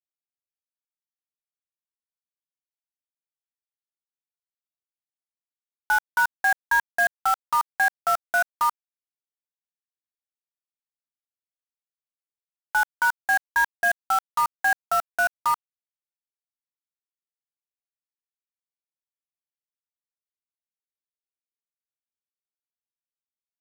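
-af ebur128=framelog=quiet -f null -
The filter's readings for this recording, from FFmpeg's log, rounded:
Integrated loudness:
  I:         -23.7 LUFS
  Threshold: -33.7 LUFS
Loudness range:
  LRA:         8.6 LU
  Threshold: -46.3 LUFS
  LRA low:   -32.3 LUFS
  LRA high:  -23.7 LUFS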